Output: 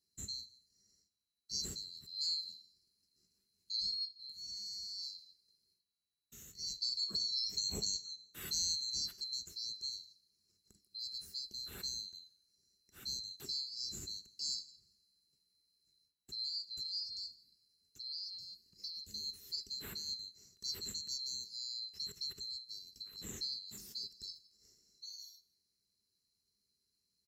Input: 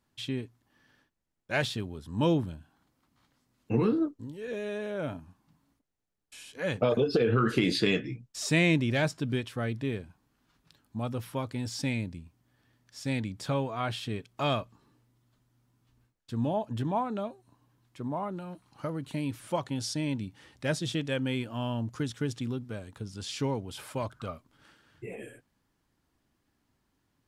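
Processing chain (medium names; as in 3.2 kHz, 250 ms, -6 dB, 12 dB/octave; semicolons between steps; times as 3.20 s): split-band scrambler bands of 4 kHz; high-pass 50 Hz; amplifier tone stack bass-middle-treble 10-0-1; delay 165 ms -23.5 dB; in parallel at -2 dB: compression, threshold -59 dBFS, peak gain reduction 16.5 dB; on the sum: graphic EQ with 31 bands 200 Hz +10 dB, 400 Hz +10 dB, 630 Hz -6 dB, 3.15 kHz -6 dB, 10 kHz +12 dB; two-slope reverb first 0.43 s, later 1.6 s, from -17 dB, DRR 14.5 dB; trim +8 dB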